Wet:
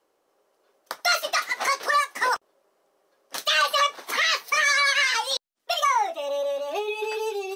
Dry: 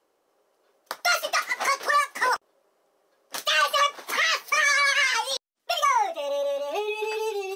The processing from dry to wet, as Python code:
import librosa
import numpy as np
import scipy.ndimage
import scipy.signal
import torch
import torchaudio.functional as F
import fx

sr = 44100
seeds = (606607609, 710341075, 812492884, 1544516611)

y = fx.dynamic_eq(x, sr, hz=4000.0, q=4.6, threshold_db=-43.0, ratio=4.0, max_db=5)